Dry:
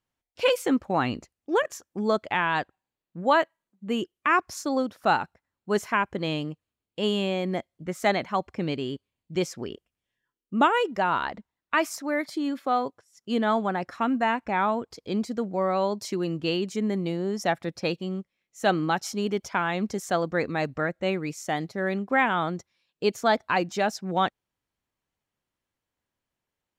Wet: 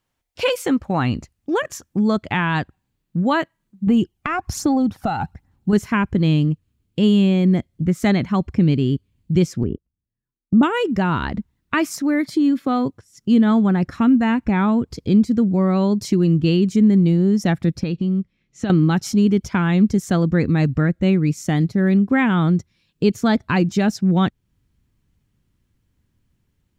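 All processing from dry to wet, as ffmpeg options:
-filter_complex "[0:a]asettb=1/sr,asplit=3[s0][s1][s2];[s0]atrim=end=3.874[s3];[s1]atrim=start=3.87:end=5.73,asetpts=PTS-STARTPTS,afade=t=in:d=0.004:c=qsin,afade=t=out:st=1.856:d=0.004:c=qsin,equalizer=f=790:w=4.5:g=12.5,acompressor=threshold=0.0501:ratio=3:attack=3.2:release=140:knee=1:detection=peak,aphaser=in_gain=1:out_gain=1:delay=1.5:decay=0.44:speed=1.2:type=sinusoidal[s4];[s2]atrim=start=5.726[s5];[s3][s4]acrossfade=d=0.004:c1=hsin:c2=qsin[s6];[s6][s5]acrossfade=d=0.004:c1=qsin:c2=hsin,asettb=1/sr,asplit=3[s7][s8][s9];[s7]atrim=end=9.634[s10];[s8]atrim=start=9.63:end=10.63,asetpts=PTS-STARTPTS,afade=t=in:d=0.004:c=qsin,afade=t=out:st=0.996:d=0.004:c=qsin,lowpass=1100,agate=range=0.126:threshold=0.00631:ratio=16:release=100:detection=peak[s11];[s9]atrim=start=10.626[s12];[s10][s11]acrossfade=d=0.004:c1=hsin:c2=qsin[s13];[s13][s12]acrossfade=d=0.004:c1=qsin:c2=hsin,asettb=1/sr,asplit=3[s14][s15][s16];[s14]atrim=end=17.834[s17];[s15]atrim=start=17.83:end=18.7,asetpts=PTS-STARTPTS,afade=t=in:d=0.004:c=qsin,afade=t=out:st=0.866:d=0.004:c=qsin,lowpass=5000,acompressor=threshold=0.0178:ratio=2.5:attack=3.2:release=140:knee=1:detection=peak[s18];[s16]atrim=start=18.696[s19];[s17][s18]acrossfade=d=0.004:c1=hsin:c2=qsin[s20];[s20][s19]acrossfade=d=0.004:c1=qsin:c2=hsin,asubboost=boost=9.5:cutoff=210,acompressor=threshold=0.0224:ratio=1.5,volume=2.66"

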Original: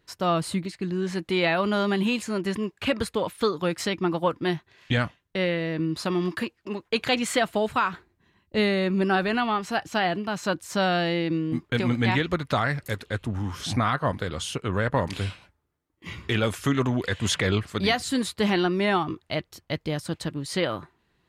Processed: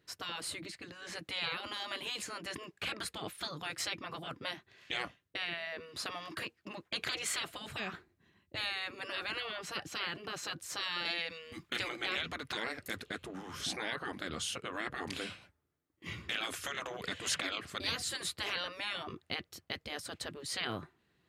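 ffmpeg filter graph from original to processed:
-filter_complex "[0:a]asettb=1/sr,asplit=3[s0][s1][s2];[s0]atrim=end=11.054[s3];[s1]atrim=start=11.05:end=11.89,asetpts=PTS-STARTPTS,afade=t=in:d=0.004:c=qsin,afade=t=out:st=0.836:d=0.004:c=qsin,equalizer=f=400:w=0.45:g=-13,aecho=1:1:5.9:0.37,atrim=end_sample=37044,acontrast=46[s4];[s2]atrim=start=11.886[s5];[s3][s4]acrossfade=d=0.004:c1=hsin:c2=qsin[s6];[s6][s5]acrossfade=d=0.004:c1=qsin:c2=hsin,afftfilt=real='re*lt(hypot(re,im),0.141)':imag='im*lt(hypot(re,im),0.141)':win_size=1024:overlap=0.75,highpass=77,equalizer=f=940:t=o:w=0.31:g=-6,volume=0.631"

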